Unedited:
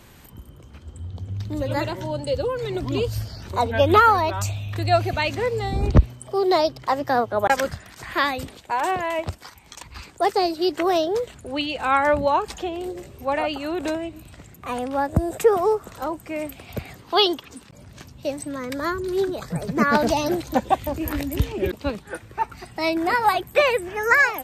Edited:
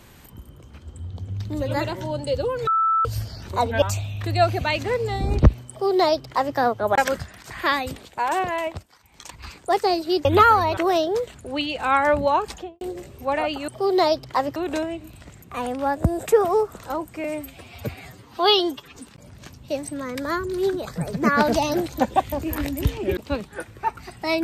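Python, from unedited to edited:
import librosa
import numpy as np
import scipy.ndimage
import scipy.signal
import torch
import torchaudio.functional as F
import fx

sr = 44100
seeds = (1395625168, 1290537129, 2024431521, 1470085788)

y = fx.studio_fade_out(x, sr, start_s=12.49, length_s=0.32)
y = fx.edit(y, sr, fx.bleep(start_s=2.67, length_s=0.38, hz=1320.0, db=-16.5),
    fx.move(start_s=3.82, length_s=0.52, to_s=10.77),
    fx.duplicate(start_s=6.21, length_s=0.88, to_s=13.68),
    fx.fade_down_up(start_s=9.11, length_s=0.68, db=-13.5, fade_s=0.3),
    fx.stretch_span(start_s=16.36, length_s=1.15, factor=1.5), tone=tone)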